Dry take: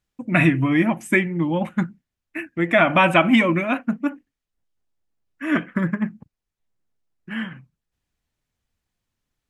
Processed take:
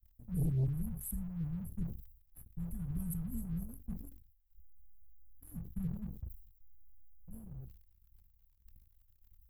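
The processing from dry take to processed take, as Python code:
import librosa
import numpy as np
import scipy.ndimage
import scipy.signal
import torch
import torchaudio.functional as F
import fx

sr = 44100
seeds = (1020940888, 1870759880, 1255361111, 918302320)

y = scipy.signal.sosfilt(scipy.signal.cheby2(4, 80, [350.0, 4300.0], 'bandstop', fs=sr, output='sos'), x)
y = fx.leveller(y, sr, passes=2)
y = fx.sustainer(y, sr, db_per_s=78.0)
y = y * librosa.db_to_amplitude(15.5)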